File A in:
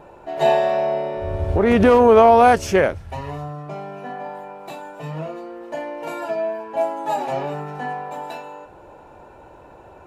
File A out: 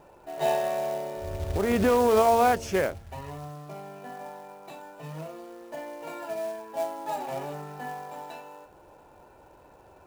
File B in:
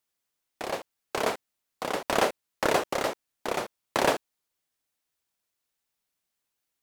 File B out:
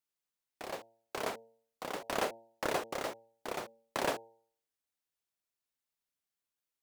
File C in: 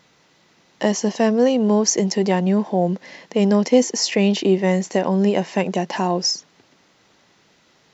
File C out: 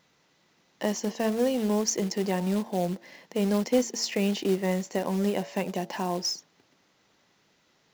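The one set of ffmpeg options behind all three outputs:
-af "acrusher=bits=4:mode=log:mix=0:aa=0.000001,bandreject=f=114:t=h:w=4,bandreject=f=228:t=h:w=4,bandreject=f=342:t=h:w=4,bandreject=f=456:t=h:w=4,bandreject=f=570:t=h:w=4,bandreject=f=684:t=h:w=4,bandreject=f=798:t=h:w=4,bandreject=f=912:t=h:w=4,volume=0.355"

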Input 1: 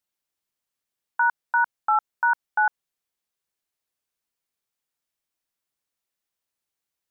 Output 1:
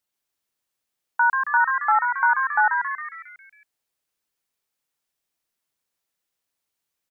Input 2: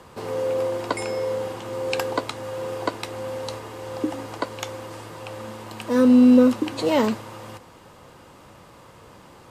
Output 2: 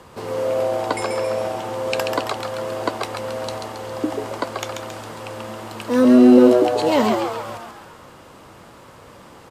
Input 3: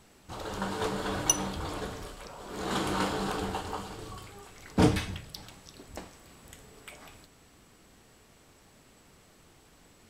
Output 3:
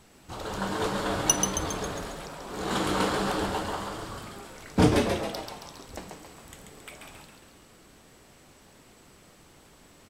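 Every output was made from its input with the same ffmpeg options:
-filter_complex "[0:a]asplit=8[s0][s1][s2][s3][s4][s5][s6][s7];[s1]adelay=136,afreqshift=120,volume=0.562[s8];[s2]adelay=272,afreqshift=240,volume=0.302[s9];[s3]adelay=408,afreqshift=360,volume=0.164[s10];[s4]adelay=544,afreqshift=480,volume=0.0881[s11];[s5]adelay=680,afreqshift=600,volume=0.0479[s12];[s6]adelay=816,afreqshift=720,volume=0.0257[s13];[s7]adelay=952,afreqshift=840,volume=0.014[s14];[s0][s8][s9][s10][s11][s12][s13][s14]amix=inputs=8:normalize=0,volume=1.26"

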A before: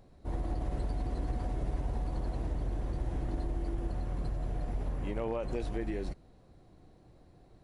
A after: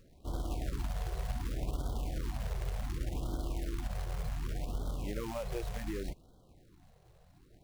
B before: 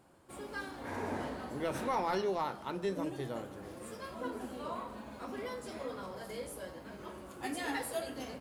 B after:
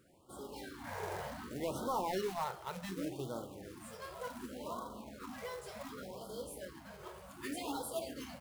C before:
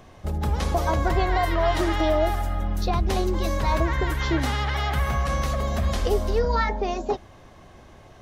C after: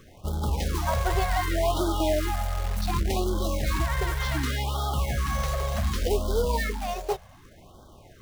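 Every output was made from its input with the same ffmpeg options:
-af "acontrast=73,acrusher=bits=3:mode=log:mix=0:aa=0.000001,afftfilt=real='re*(1-between(b*sr/1024,240*pow(2200/240,0.5+0.5*sin(2*PI*0.67*pts/sr))/1.41,240*pow(2200/240,0.5+0.5*sin(2*PI*0.67*pts/sr))*1.41))':imag='im*(1-between(b*sr/1024,240*pow(2200/240,0.5+0.5*sin(2*PI*0.67*pts/sr))/1.41,240*pow(2200/240,0.5+0.5*sin(2*PI*0.67*pts/sr))*1.41))':win_size=1024:overlap=0.75,volume=0.355"

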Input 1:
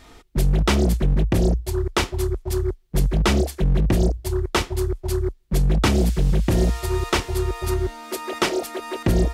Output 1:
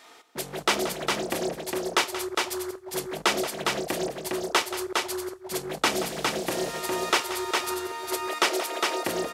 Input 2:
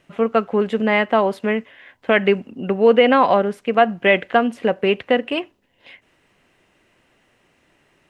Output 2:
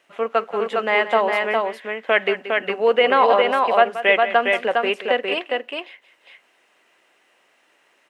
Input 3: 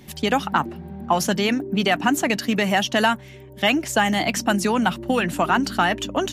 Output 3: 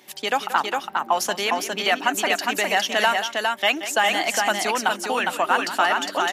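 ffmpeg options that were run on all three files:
-filter_complex "[0:a]highpass=520,asplit=2[s0][s1];[s1]aecho=0:1:179|408:0.224|0.668[s2];[s0][s2]amix=inputs=2:normalize=0"

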